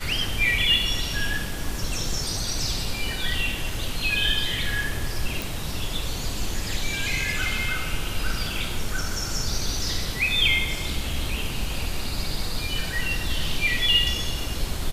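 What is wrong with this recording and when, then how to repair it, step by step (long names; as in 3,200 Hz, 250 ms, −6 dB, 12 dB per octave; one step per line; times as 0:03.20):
0:05.42: click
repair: click removal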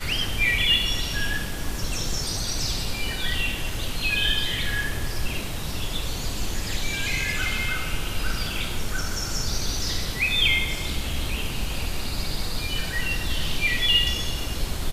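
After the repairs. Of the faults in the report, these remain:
none of them is left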